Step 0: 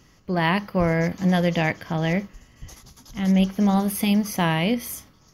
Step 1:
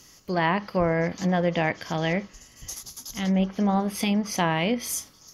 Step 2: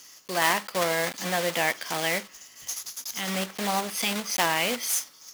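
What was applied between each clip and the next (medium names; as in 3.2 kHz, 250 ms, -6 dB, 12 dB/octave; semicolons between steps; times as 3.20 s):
low-pass that closes with the level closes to 1.6 kHz, closed at -16.5 dBFS; tone controls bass -6 dB, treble +14 dB
block-companded coder 3-bit; high-pass 950 Hz 6 dB/octave; trim +3 dB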